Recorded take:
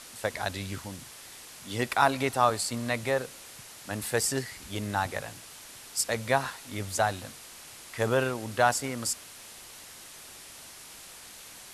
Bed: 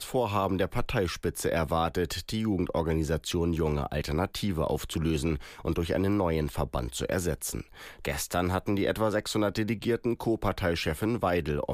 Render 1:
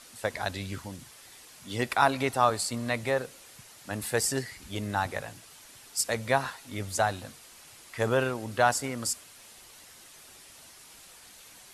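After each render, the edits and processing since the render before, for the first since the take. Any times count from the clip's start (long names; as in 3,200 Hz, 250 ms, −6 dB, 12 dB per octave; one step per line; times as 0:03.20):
broadband denoise 6 dB, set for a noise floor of −48 dBFS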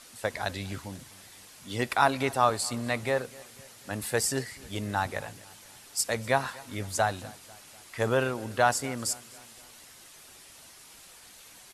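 repeating echo 247 ms, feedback 54%, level −22.5 dB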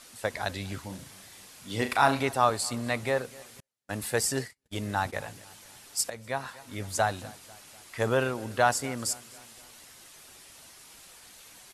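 0:00.86–0:02.20: flutter between parallel walls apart 6.3 metres, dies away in 0.29 s
0:03.60–0:05.24: noise gate −41 dBFS, range −40 dB
0:06.10–0:06.97: fade in, from −13 dB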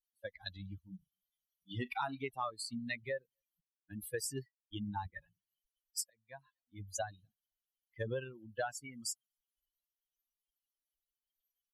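spectral dynamics exaggerated over time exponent 3
downward compressor 6 to 1, threshold −35 dBFS, peak gain reduction 14.5 dB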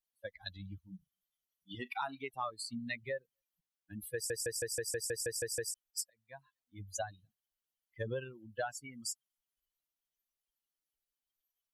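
0:01.75–0:02.34: high-pass filter 350 Hz 6 dB per octave
0:04.14: stutter in place 0.16 s, 10 plays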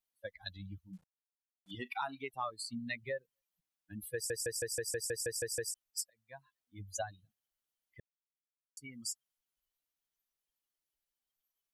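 0:00.93–0:01.71: variable-slope delta modulation 64 kbit/s
0:08.00–0:08.77: silence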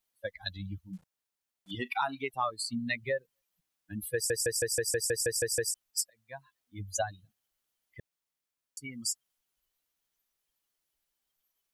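level +7 dB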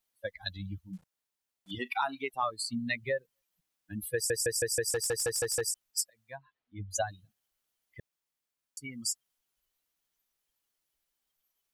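0:01.78–0:02.43: parametric band 120 Hz −10.5 dB 0.84 octaves
0:04.90–0:05.61: gain into a clipping stage and back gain 25 dB
0:06.36–0:06.91: Gaussian smoothing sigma 2.3 samples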